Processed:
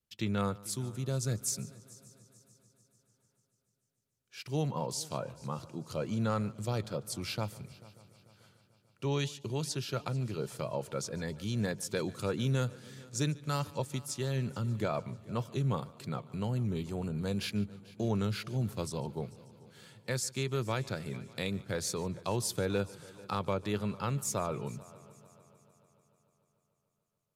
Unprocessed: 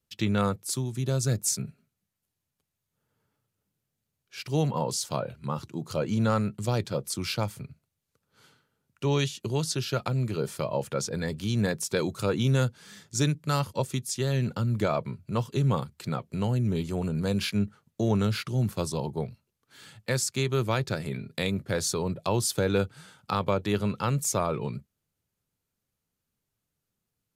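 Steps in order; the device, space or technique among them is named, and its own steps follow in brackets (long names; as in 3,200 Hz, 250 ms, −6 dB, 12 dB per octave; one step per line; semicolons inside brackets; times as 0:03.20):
multi-head tape echo (echo machine with several playback heads 147 ms, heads first and third, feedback 59%, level −22 dB; tape wow and flutter 22 cents)
level −6.5 dB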